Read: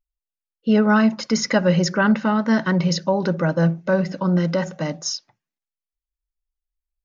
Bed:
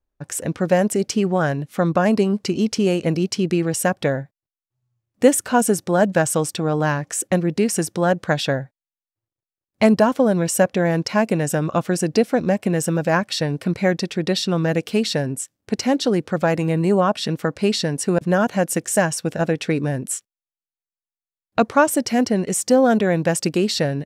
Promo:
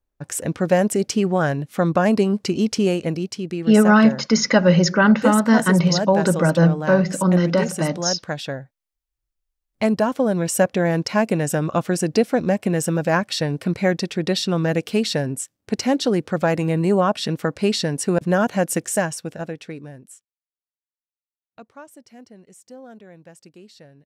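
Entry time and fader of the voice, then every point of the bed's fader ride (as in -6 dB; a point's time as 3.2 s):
3.00 s, +3.0 dB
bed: 2.84 s 0 dB
3.41 s -7.5 dB
9.34 s -7.5 dB
10.66 s -0.5 dB
18.81 s -0.5 dB
20.65 s -26 dB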